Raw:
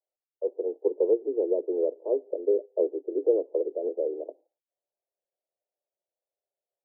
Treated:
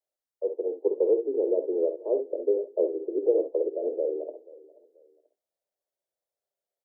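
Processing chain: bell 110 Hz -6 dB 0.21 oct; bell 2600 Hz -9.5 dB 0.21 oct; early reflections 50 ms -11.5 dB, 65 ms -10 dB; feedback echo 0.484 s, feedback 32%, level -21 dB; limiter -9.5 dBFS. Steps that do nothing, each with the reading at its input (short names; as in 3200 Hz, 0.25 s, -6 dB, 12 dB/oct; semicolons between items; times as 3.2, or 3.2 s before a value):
bell 110 Hz: input band starts at 250 Hz; bell 2600 Hz: input band ends at 720 Hz; limiter -9.5 dBFS: input peak -11.5 dBFS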